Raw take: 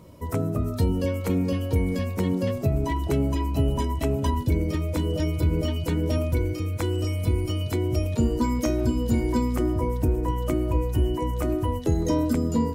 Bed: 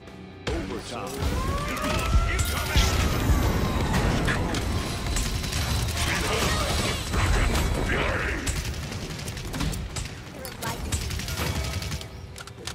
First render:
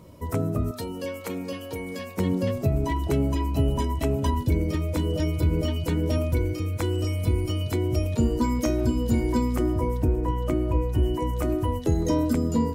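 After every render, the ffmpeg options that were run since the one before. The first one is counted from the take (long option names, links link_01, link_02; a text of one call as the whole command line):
ffmpeg -i in.wav -filter_complex "[0:a]asettb=1/sr,asplit=3[link_01][link_02][link_03];[link_01]atrim=end=0.714[link_04];[link_02]atrim=start=0.71:end=2.18,asetpts=PTS-STARTPTS,afade=type=in:duration=0.004:curve=qsin,afade=type=out:start_time=1.466:duration=0.004:curve=qsin,highpass=frequency=620:poles=1[link_05];[link_03]atrim=start=2.176[link_06];[link_04][link_05]acrossfade=duration=0.004:curve1=hsin:curve2=qsin[link_07];[link_07][link_06]acrossfade=duration=0.004:curve1=qsin:curve2=hsin,asettb=1/sr,asplit=3[link_08][link_09][link_10];[link_08]atrim=end=10.004[link_11];[link_09]atrim=start=10:end=11.03,asetpts=PTS-STARTPTS,afade=type=in:duration=0.004:curve=qsin,afade=type=out:start_time=1.026:duration=0.004:curve=qsin,highshelf=frequency=4600:gain=-7.5[link_12];[link_10]atrim=start=11.026[link_13];[link_11][link_12]acrossfade=duration=0.004:curve1=hsin:curve2=qsin[link_14];[link_14][link_13]acrossfade=duration=0.004:curve1=qsin:curve2=hsin" out.wav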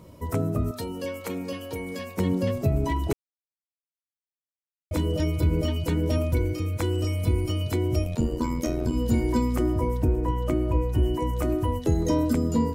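ffmpeg -i in.wav -filter_complex "[0:a]asplit=3[link_01][link_02][link_03];[link_01]afade=type=out:start_time=8.03:duration=0.02[link_04];[link_02]tremolo=f=84:d=0.71,afade=type=in:start_time=8.03:duration=0.02,afade=type=out:start_time=8.92:duration=0.02[link_05];[link_03]afade=type=in:start_time=8.92:duration=0.02[link_06];[link_04][link_05][link_06]amix=inputs=3:normalize=0,asplit=3[link_07][link_08][link_09];[link_07]atrim=end=3.13,asetpts=PTS-STARTPTS,afade=type=out:start_time=3.126:duration=0.004:curve=hsin[link_10];[link_08]atrim=start=3.13:end=4.91,asetpts=PTS-STARTPTS,volume=0[link_11];[link_09]atrim=start=4.91,asetpts=PTS-STARTPTS,afade=type=in:duration=0.004:curve=hsin[link_12];[link_10][link_11][link_12]concat=n=3:v=0:a=1" out.wav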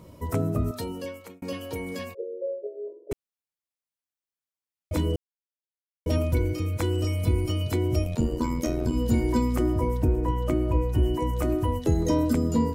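ffmpeg -i in.wav -filter_complex "[0:a]asplit=3[link_01][link_02][link_03];[link_01]afade=type=out:start_time=2.13:duration=0.02[link_04];[link_02]asuperpass=centerf=470:order=8:qfactor=2.5,afade=type=in:start_time=2.13:duration=0.02,afade=type=out:start_time=3.11:duration=0.02[link_05];[link_03]afade=type=in:start_time=3.11:duration=0.02[link_06];[link_04][link_05][link_06]amix=inputs=3:normalize=0,asplit=4[link_07][link_08][link_09][link_10];[link_07]atrim=end=1.42,asetpts=PTS-STARTPTS,afade=type=out:start_time=0.89:duration=0.53[link_11];[link_08]atrim=start=1.42:end=5.16,asetpts=PTS-STARTPTS,afade=type=in:duration=0.004:curve=hsin,afade=type=out:start_time=3.736:duration=0.004:curve=hsin[link_12];[link_09]atrim=start=5.16:end=6.06,asetpts=PTS-STARTPTS,volume=0[link_13];[link_10]atrim=start=6.06,asetpts=PTS-STARTPTS,afade=type=in:duration=0.004:curve=hsin[link_14];[link_11][link_12][link_13][link_14]concat=n=4:v=0:a=1" out.wav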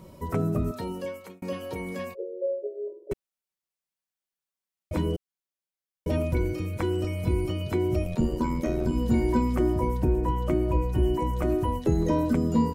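ffmpeg -i in.wav -filter_complex "[0:a]acrossover=split=2900[link_01][link_02];[link_02]acompressor=threshold=-49dB:ratio=4:attack=1:release=60[link_03];[link_01][link_03]amix=inputs=2:normalize=0,aecho=1:1:5.3:0.41" out.wav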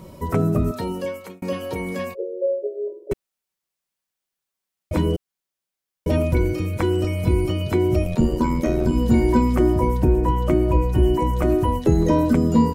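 ffmpeg -i in.wav -af "volume=6.5dB" out.wav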